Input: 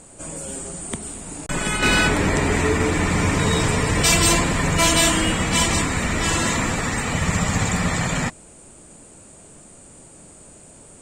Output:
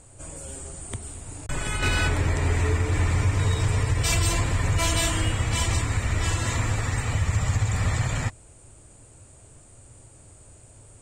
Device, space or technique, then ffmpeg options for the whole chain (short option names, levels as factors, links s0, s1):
car stereo with a boomy subwoofer: -af "lowshelf=f=140:t=q:w=3:g=7.5,alimiter=limit=0.447:level=0:latency=1:release=177,volume=0.447"